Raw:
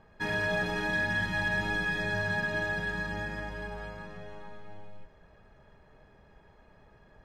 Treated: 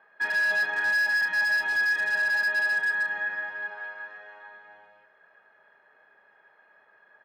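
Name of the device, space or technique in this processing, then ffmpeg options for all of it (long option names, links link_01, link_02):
megaphone: -filter_complex "[0:a]asettb=1/sr,asplit=3[link_01][link_02][link_03];[link_01]atrim=end=3.704[link_04];[link_02]atrim=start=3.7:end=4.54,asetpts=PTS-STARTPTS,afade=type=in:duration=0.004:curve=qsin,afade=type=out:start_time=0.836:duration=0.004:curve=qsin,highpass=250[link_05];[link_03]atrim=start=4.536[link_06];[link_04][link_05]acrossfade=duration=0.004:curve1=hsin:curve2=qsin[link_07];[link_07][link_06]acrossfade=duration=0.004:curve1=qsin:curve2=hsin,highpass=640,lowpass=2900,equalizer=frequency=1600:width_type=o:width=0.41:gain=10,asoftclip=type=hard:threshold=-23dB,asplit=2[link_08][link_09];[link_09]adelay=30,volume=-11dB[link_10];[link_08][link_10]amix=inputs=2:normalize=0"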